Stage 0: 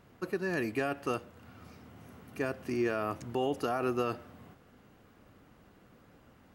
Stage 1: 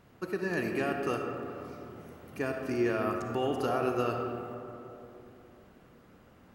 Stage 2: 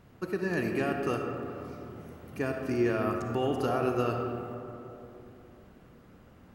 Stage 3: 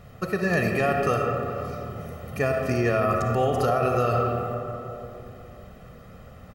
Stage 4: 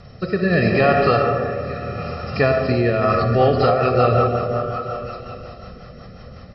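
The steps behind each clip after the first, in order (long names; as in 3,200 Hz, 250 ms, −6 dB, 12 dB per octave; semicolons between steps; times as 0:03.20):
comb and all-pass reverb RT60 3.1 s, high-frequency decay 0.35×, pre-delay 15 ms, DRR 3 dB
low-shelf EQ 210 Hz +6 dB
comb filter 1.6 ms, depth 70%; brickwall limiter −21.5 dBFS, peak gain reduction 6.5 dB; level +8 dB
hearing-aid frequency compression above 3,800 Hz 4 to 1; echo through a band-pass that steps 306 ms, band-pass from 660 Hz, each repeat 0.7 octaves, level −6 dB; rotating-speaker cabinet horn 0.75 Hz, later 5.5 Hz, at 0:02.75; level +8 dB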